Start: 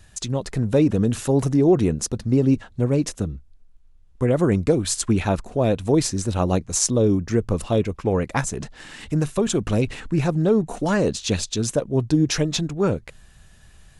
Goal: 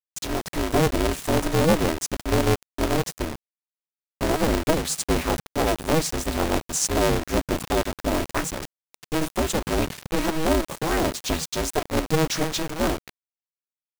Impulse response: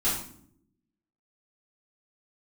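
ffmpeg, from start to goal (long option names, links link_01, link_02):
-filter_complex "[0:a]asettb=1/sr,asplit=3[link_01][link_02][link_03];[link_01]atrim=end=3.054[link_04];[link_02]atrim=start=3.05:end=4.37,asetpts=PTS-STARTPTS,afade=type=in:duration=0.004:curve=qsin,afade=type=out:start_time=1.316:duration=0.004:curve=qsin,asubboost=boost=8.5:cutoff=56[link_05];[link_03]atrim=start=4.366[link_06];[link_04][link_05]acrossfade=duration=0.004:curve1=hsin:curve2=qsin[link_07];[link_07][link_06]acrossfade=duration=0.004:curve1=qsin:curve2=hsin,acrusher=bits=4:mix=0:aa=0.000001,aeval=exprs='val(0)*sgn(sin(2*PI*160*n/s))':channel_layout=same,volume=-3dB"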